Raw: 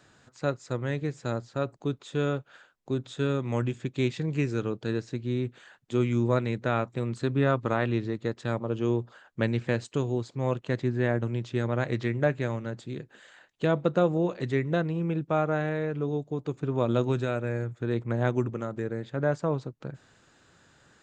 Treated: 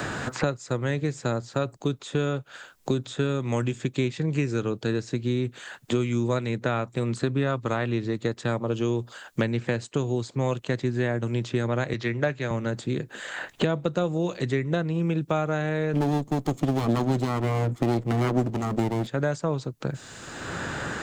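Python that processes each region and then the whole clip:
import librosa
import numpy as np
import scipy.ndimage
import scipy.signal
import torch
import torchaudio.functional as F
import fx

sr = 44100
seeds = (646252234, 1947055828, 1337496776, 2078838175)

y = fx.chain(x, sr, fx.lowpass(hz=6400.0, slope=24),
    fx.tilt_eq(slope=1.5),
    fx.band_widen(depth_pct=40), at=(11.93, 12.51))
y = fx.chain(y, sr, fx.lower_of_two(delay_ms=0.93),
    fx.peak_eq(hz=280.0, db=12.5, octaves=2.9), at=(15.93, 19.07))
y = fx.high_shelf(y, sr, hz=4900.0, db=10.5)
y = fx.band_squash(y, sr, depth_pct=100)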